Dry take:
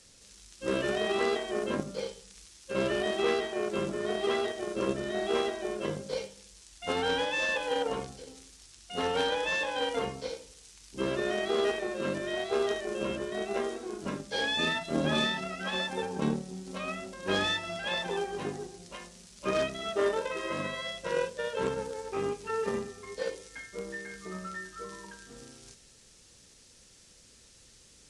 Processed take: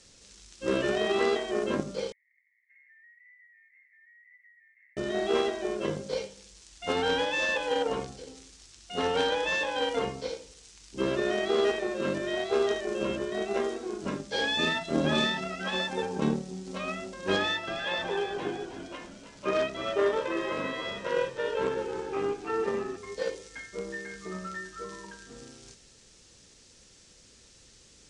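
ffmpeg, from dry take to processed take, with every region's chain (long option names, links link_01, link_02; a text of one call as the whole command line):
ffmpeg -i in.wav -filter_complex "[0:a]asettb=1/sr,asplit=3[link_01][link_02][link_03];[link_01]atrim=end=2.124[link_04];[link_02]atrim=start=2.12:end=4.97,asetpts=PTS-STARTPTS,afade=type=in:duration=0.004:curve=qsin,afade=type=out:start_time=2.846:duration=0.004:curve=qsin,asuperpass=centerf=2000:order=8:qfactor=5.4,acompressor=threshold=-60dB:ratio=4:attack=3.2:release=140:knee=1:detection=peak[link_05];[link_03]atrim=start=4.966[link_06];[link_04][link_05]acrossfade=duration=0.004:curve1=hsin:curve2=qsin[link_07];[link_07][link_06]acrossfade=duration=0.004:curve1=qsin:curve2=hsin,asettb=1/sr,asplit=3[link_08][link_09][link_10];[link_08]atrim=end=17.364[link_11];[link_09]atrim=start=17.36:end=22.97,asetpts=PTS-STARTPTS,afade=type=in:duration=0.004:curve=qsin,afade=type=out:start_time=5.606:duration=0.004:curve=qsin,bass=frequency=250:gain=-6,treble=frequency=4000:gain=-6,asplit=6[link_12][link_13][link_14][link_15][link_16][link_17];[link_13]adelay=313,afreqshift=-67,volume=-10dB[link_18];[link_14]adelay=626,afreqshift=-134,volume=-16.6dB[link_19];[link_15]adelay=939,afreqshift=-201,volume=-23.1dB[link_20];[link_16]adelay=1252,afreqshift=-268,volume=-29.7dB[link_21];[link_17]adelay=1565,afreqshift=-335,volume=-36.2dB[link_22];[link_12][link_18][link_19][link_20][link_21][link_22]amix=inputs=6:normalize=0,atrim=end_sample=247401[link_23];[link_10]atrim=start=22.966[link_24];[link_11][link_23]acrossfade=duration=0.004:curve1=hsin:curve2=qsin[link_25];[link_25][link_24]acrossfade=duration=0.004:curve1=qsin:curve2=hsin,lowpass=frequency=8500:width=0.5412,lowpass=frequency=8500:width=1.3066,equalizer=frequency=350:width_type=o:width=0.77:gain=2,volume=1.5dB" out.wav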